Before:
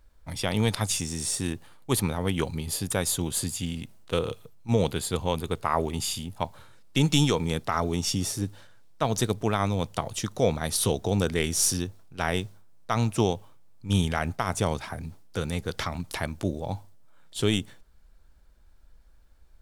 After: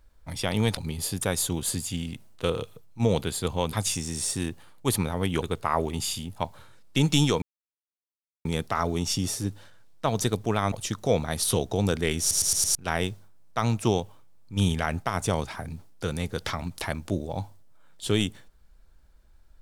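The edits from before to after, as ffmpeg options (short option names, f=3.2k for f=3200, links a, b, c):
-filter_complex "[0:a]asplit=11[a][b][c][d][e][f][g][h][i][j][k];[a]atrim=end=0.772[l];[b]atrim=start=2.458:end=5.422[m];[c]atrim=start=0.768:end=2.462[n];[d]atrim=start=5.418:end=7.42,asetpts=PTS-STARTPTS,afade=t=out:st=1.998:d=0.004:c=hsin,apad=pad_dur=1.03[o];[e]atrim=start=7.42:end=9.692,asetpts=PTS-STARTPTS,afade=t=in:d=0.004:c=hsin[p];[f]atrim=start=10.048:end=11.642[q];[g]atrim=start=11.528:end=11.642[r];[h]atrim=start=11.528:end=11.642[s];[i]atrim=start=11.528:end=11.642[t];[j]atrim=start=11.528:end=11.642[u];[k]atrim=start=12.078[v];[l][m]acrossfade=d=0.004:c1=hsin:c2=hsin[w];[w][n]acrossfade=d=0.004:c1=hsin:c2=hsin[x];[o][p]concat=n=2:v=0:a=1[y];[x][y]acrossfade=d=0.004:c1=hsin:c2=hsin[z];[z][q]acrossfade=d=0.004:c1=hsin:c2=hsin[aa];[aa][r]acrossfade=d=0.004:c1=hsin:c2=hsin[ab];[ab][s]acrossfade=d=0.004:c1=hsin:c2=hsin[ac];[ac][t]acrossfade=d=0.004:c1=hsin:c2=hsin[ad];[ad][u]acrossfade=d=0.004:c1=hsin:c2=hsin[ae];[ae][v]acrossfade=d=0.004:c1=hsin:c2=hsin"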